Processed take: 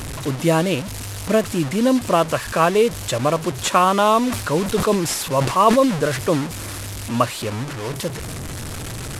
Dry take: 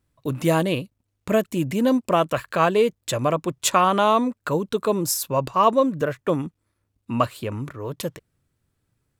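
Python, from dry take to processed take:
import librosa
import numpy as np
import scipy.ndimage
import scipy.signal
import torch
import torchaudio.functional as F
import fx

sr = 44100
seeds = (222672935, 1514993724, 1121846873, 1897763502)

y = fx.delta_mod(x, sr, bps=64000, step_db=-26.0)
y = fx.sustainer(y, sr, db_per_s=69.0, at=(4.22, 6.44))
y = F.gain(torch.from_numpy(y), 2.5).numpy()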